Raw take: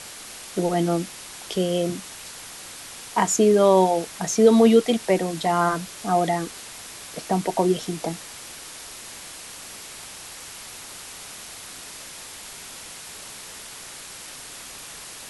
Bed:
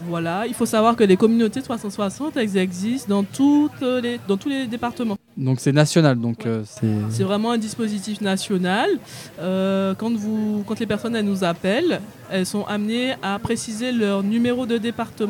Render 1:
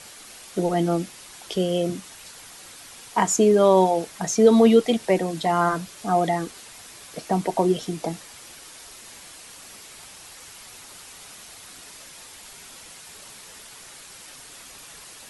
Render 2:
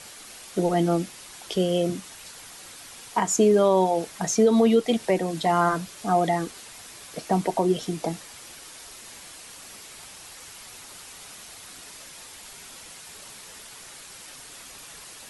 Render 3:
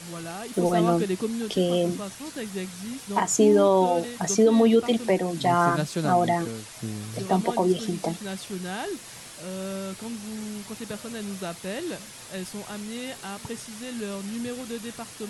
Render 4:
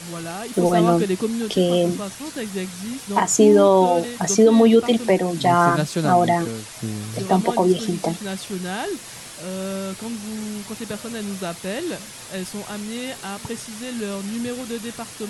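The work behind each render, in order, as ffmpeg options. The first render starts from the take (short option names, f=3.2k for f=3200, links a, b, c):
-af "afftdn=nr=6:nf=-40"
-af "alimiter=limit=-10.5dB:level=0:latency=1:release=234"
-filter_complex "[1:a]volume=-13dB[a];[0:a][a]amix=inputs=2:normalize=0"
-af "volume=5dB"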